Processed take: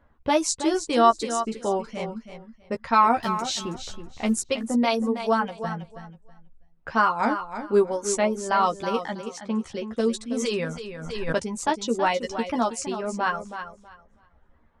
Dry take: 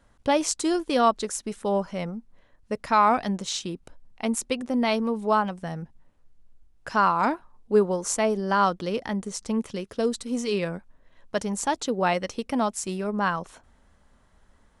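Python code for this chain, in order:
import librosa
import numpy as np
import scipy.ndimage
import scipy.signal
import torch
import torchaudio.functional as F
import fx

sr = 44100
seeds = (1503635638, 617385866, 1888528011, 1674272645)

y = fx.zero_step(x, sr, step_db=-36.5, at=(3.23, 4.34))
y = fx.bessel_highpass(y, sr, hz=180.0, order=2, at=(8.98, 9.64))
y = fx.env_lowpass(y, sr, base_hz=1900.0, full_db=-21.5)
y = fx.dereverb_blind(y, sr, rt60_s=0.89)
y = fx.wow_flutter(y, sr, seeds[0], rate_hz=2.1, depth_cents=68.0)
y = fx.doubler(y, sr, ms=13.0, db=-5)
y = fx.echo_feedback(y, sr, ms=323, feedback_pct=20, wet_db=-10)
y = fx.pre_swell(y, sr, db_per_s=43.0, at=(10.39, 11.44))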